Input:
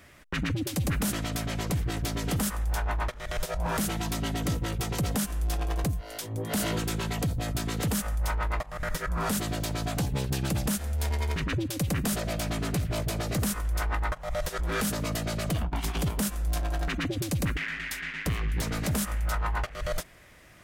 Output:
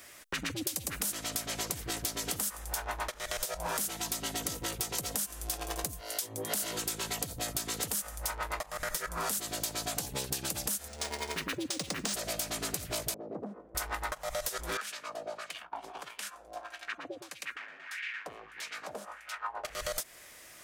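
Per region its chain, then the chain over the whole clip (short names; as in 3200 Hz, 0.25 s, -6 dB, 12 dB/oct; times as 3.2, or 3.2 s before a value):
10.88–12.14 resonant low shelf 140 Hz -6.5 dB, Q 1.5 + decimation joined by straight lines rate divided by 3×
13.14–13.75 Butterworth band-pass 330 Hz, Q 0.88 + core saturation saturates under 350 Hz
14.77–19.65 notch 2000 Hz, Q 17 + wah 1.6 Hz 570–2400 Hz, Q 2.1
whole clip: tone controls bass -13 dB, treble +11 dB; compressor 6:1, threshold -31 dBFS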